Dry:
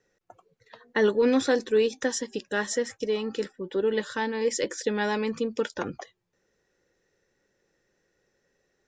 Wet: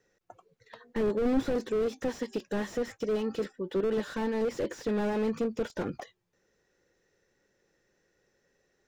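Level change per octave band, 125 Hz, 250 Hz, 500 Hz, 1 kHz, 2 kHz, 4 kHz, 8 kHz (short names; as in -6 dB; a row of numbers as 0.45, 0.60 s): +1.0, -1.5, -4.5, -5.5, -10.0, -10.0, -14.5 dB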